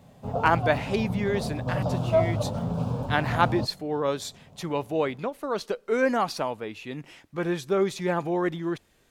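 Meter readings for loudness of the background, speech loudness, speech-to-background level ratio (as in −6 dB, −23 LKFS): −29.0 LKFS, −28.5 LKFS, 0.5 dB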